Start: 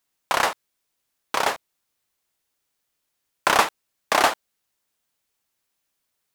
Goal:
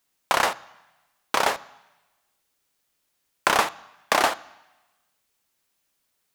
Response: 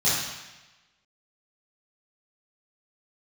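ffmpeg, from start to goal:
-filter_complex "[0:a]acompressor=threshold=-20dB:ratio=3,asplit=2[a][b];[1:a]atrim=start_sample=2205,highshelf=f=4.3k:g=-6.5[c];[b][c]afir=irnorm=-1:irlink=0,volume=-32dB[d];[a][d]amix=inputs=2:normalize=0,volume=3dB"

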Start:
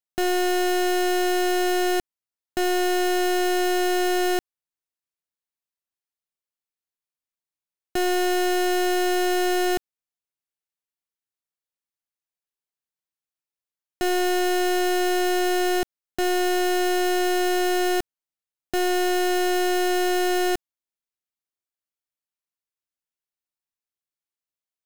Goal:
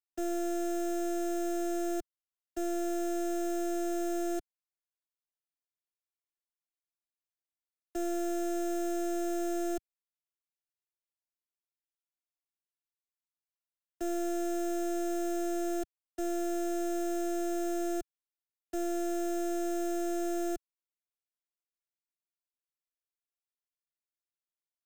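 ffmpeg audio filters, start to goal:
-filter_complex "[0:a]afftfilt=real='hypot(re,im)*cos(PI*b)':imag='0':win_size=512:overlap=0.75,acrossover=split=100|1000|2900[a][b][c][d];[c]aeval=exprs='0.0126*(abs(mod(val(0)/0.0126+3,4)-2)-1)':c=same[e];[a][b][e][d]amix=inputs=4:normalize=0,volume=-9dB"

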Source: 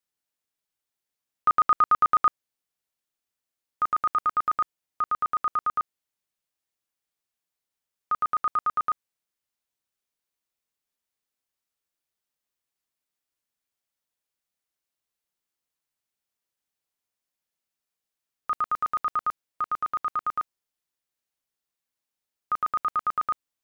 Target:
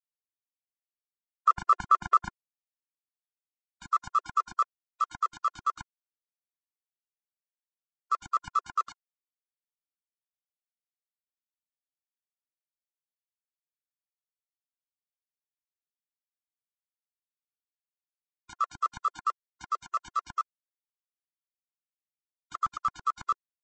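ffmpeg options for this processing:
-af "agate=range=-21dB:threshold=-29dB:ratio=16:detection=peak,lowshelf=f=170:t=q:w=3:g=7.5,aeval=exprs='val(0)*sin(2*PI*62*n/s)':c=same,aresample=16000,acrusher=bits=6:mix=0:aa=0.000001,aresample=44100,afftfilt=real='re*gt(sin(2*PI*4.5*pts/sr)*(1-2*mod(floor(b*sr/1024/350),2)),0)':imag='im*gt(sin(2*PI*4.5*pts/sr)*(1-2*mod(floor(b*sr/1024/350),2)),0)':win_size=1024:overlap=0.75,volume=2.5dB"

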